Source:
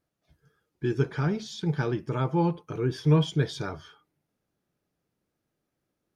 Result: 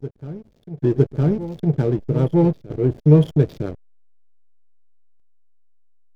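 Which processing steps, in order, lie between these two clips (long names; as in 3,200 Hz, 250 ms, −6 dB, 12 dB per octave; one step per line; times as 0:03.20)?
slack as between gear wheels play −28 dBFS
low shelf with overshoot 760 Hz +8.5 dB, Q 1.5
backwards echo 959 ms −14.5 dB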